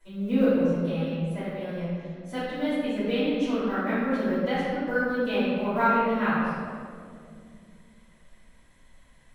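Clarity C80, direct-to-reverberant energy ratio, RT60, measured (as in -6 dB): -0.5 dB, -15.0 dB, 2.3 s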